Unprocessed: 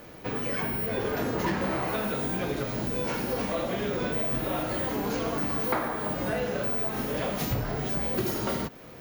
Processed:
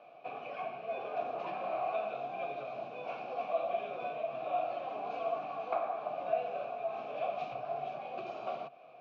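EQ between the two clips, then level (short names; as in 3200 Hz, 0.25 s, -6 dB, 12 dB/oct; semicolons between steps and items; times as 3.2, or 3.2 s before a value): vowel filter a; speaker cabinet 120–5600 Hz, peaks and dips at 140 Hz +9 dB, 660 Hz +7 dB, 2400 Hz +6 dB, 3700 Hz +4 dB; 0.0 dB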